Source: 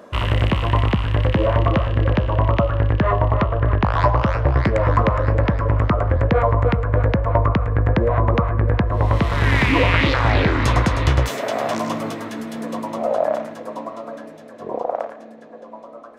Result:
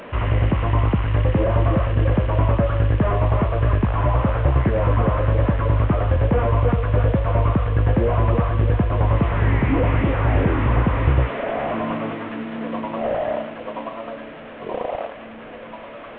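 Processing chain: delta modulation 16 kbps, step -31.5 dBFS

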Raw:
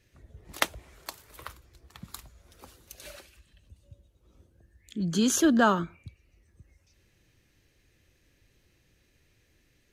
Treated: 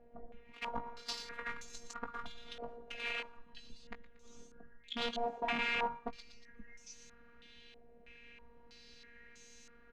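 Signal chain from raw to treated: reverse; compressor 5:1, threshold -43 dBFS, peak gain reduction 22.5 dB; reverse; wrapped overs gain 40 dB; robotiser 236 Hz; doubler 19 ms -8.5 dB; on a send: thin delay 0.117 s, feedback 48%, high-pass 1500 Hz, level -14 dB; on the sum: stepped low-pass 3.1 Hz 700–6500 Hz; gain +8.5 dB

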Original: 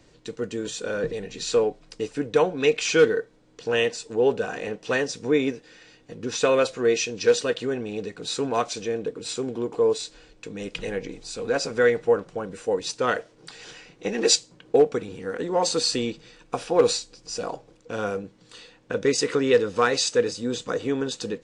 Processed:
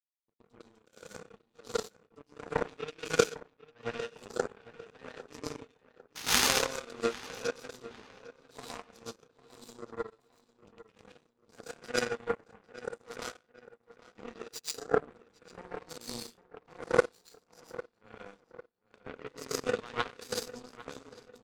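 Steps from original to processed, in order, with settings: HPF 110 Hz 12 dB/oct; in parallel at -0.5 dB: compressor 5:1, threshold -30 dBFS, peak gain reduction 16 dB; on the sum: three bands offset in time lows, mids, highs 30/240 ms, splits 420/2500 Hz; painted sound noise, 6.15–6.48, 760–6800 Hz -16 dBFS; one-sided clip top -9.5 dBFS, bottom -7 dBFS; plate-style reverb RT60 0.63 s, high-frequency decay 0.6×, pre-delay 0.1 s, DRR -5 dB; power-law curve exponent 3; on a send: darkening echo 0.801 s, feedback 39%, low-pass 3100 Hz, level -16.5 dB; on the sum: gain -2.5 dB

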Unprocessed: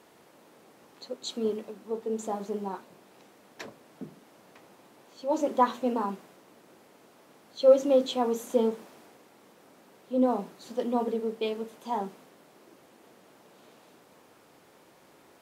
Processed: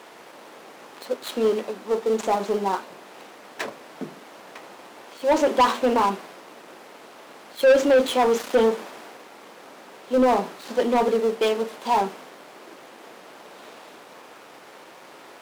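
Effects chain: switching dead time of 0.083 ms; overdrive pedal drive 22 dB, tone 4300 Hz, clips at -8.5 dBFS

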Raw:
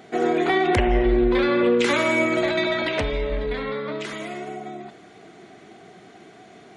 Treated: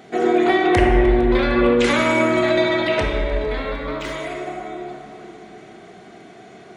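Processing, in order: 3.6–4.12 median filter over 3 samples; multi-head echo 0.152 s, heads second and third, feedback 65%, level -22.5 dB; on a send at -2 dB: reverb RT60 2.3 s, pre-delay 18 ms; on the sum: gain +1.5 dB

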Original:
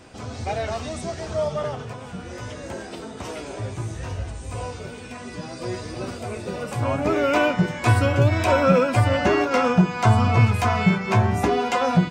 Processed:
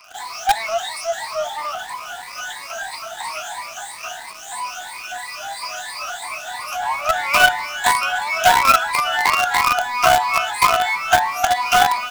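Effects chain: moving spectral ripple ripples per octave 0.93, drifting +3 Hz, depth 23 dB; steep high-pass 670 Hz 96 dB/oct; in parallel at -9.5 dB: companded quantiser 2-bit

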